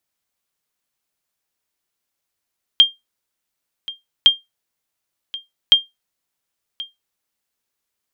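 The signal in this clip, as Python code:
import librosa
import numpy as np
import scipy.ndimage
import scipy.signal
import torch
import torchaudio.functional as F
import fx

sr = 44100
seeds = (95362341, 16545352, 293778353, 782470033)

y = fx.sonar_ping(sr, hz=3200.0, decay_s=0.18, every_s=1.46, pings=3, echo_s=1.08, echo_db=-19.0, level_db=-1.5)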